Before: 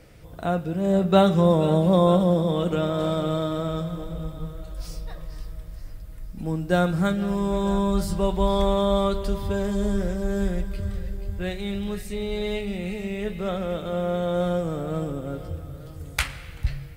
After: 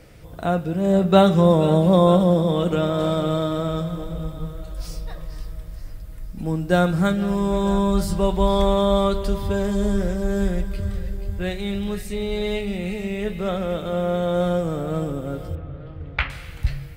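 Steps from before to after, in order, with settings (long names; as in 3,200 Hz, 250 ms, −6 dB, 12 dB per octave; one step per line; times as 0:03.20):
0:15.55–0:16.30: low-pass filter 3,000 Hz 24 dB per octave
level +3 dB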